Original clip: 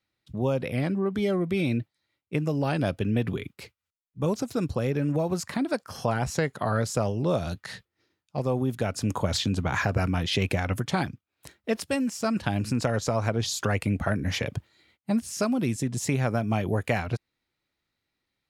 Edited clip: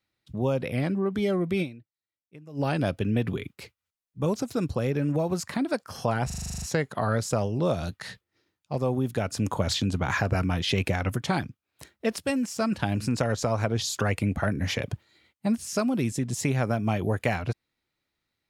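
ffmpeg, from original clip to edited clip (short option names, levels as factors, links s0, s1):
-filter_complex "[0:a]asplit=12[s0][s1][s2][s3][s4][s5][s6][s7][s8][s9][s10][s11];[s0]atrim=end=1.98,asetpts=PTS-STARTPTS,afade=t=out:st=1.62:d=0.36:c=exp:silence=0.0944061[s12];[s1]atrim=start=1.98:end=2.24,asetpts=PTS-STARTPTS,volume=0.0944[s13];[s2]atrim=start=2.24:end=6.302,asetpts=PTS-STARTPTS,afade=t=in:d=0.36:c=exp:silence=0.0944061[s14];[s3]atrim=start=6.258:end=6.302[s15];[s4]atrim=start=6.258:end=6.302[s16];[s5]atrim=start=6.258:end=6.302[s17];[s6]atrim=start=6.258:end=6.302[s18];[s7]atrim=start=6.258:end=6.302[s19];[s8]atrim=start=6.258:end=6.302[s20];[s9]atrim=start=6.258:end=6.302[s21];[s10]atrim=start=6.258:end=6.302[s22];[s11]atrim=start=6.258[s23];[s12][s13][s14]concat=n=3:v=0:a=1[s24];[s24][s15]acrossfade=d=0.004:c1=hsin:c2=hsin[s25];[s25][s16]acrossfade=d=0.004:c1=hsin:c2=hsin[s26];[s26][s17]acrossfade=d=0.004:c1=hsin:c2=hsin[s27];[s27][s18]acrossfade=d=0.004:c1=hsin:c2=hsin[s28];[s28][s19]acrossfade=d=0.004:c1=hsin:c2=hsin[s29];[s29][s20]acrossfade=d=0.004:c1=hsin:c2=hsin[s30];[s30][s21]acrossfade=d=0.004:c1=hsin:c2=hsin[s31];[s31][s22]acrossfade=d=0.004:c1=hsin:c2=hsin[s32];[s32][s23]acrossfade=d=0.004:c1=hsin:c2=hsin"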